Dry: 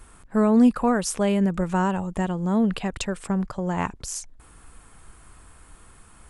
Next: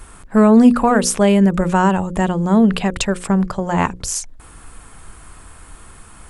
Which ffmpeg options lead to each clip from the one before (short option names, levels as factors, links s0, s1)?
-af "bandreject=f=60:t=h:w=6,bandreject=f=120:t=h:w=6,bandreject=f=180:t=h:w=6,bandreject=f=240:t=h:w=6,bandreject=f=300:t=h:w=6,bandreject=f=360:t=h:w=6,bandreject=f=420:t=h:w=6,bandreject=f=480:t=h:w=6,bandreject=f=540:t=h:w=6,acontrast=61,volume=1.41"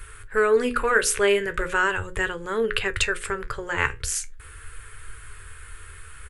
-af "firequalizer=gain_entry='entry(120,0);entry(190,-28);entry(430,0);entry(670,-19);entry(1500,5);entry(3000,1);entry(5500,-6);entry(11000,0)':delay=0.05:min_phase=1,flanger=delay=8.6:depth=6.5:regen=64:speed=0.39:shape=triangular,volume=1.5"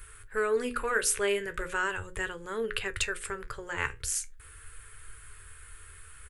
-af "highshelf=f=7300:g=8.5,volume=0.376"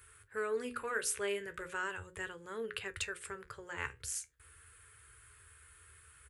-af "highpass=f=57:w=0.5412,highpass=f=57:w=1.3066,volume=0.398"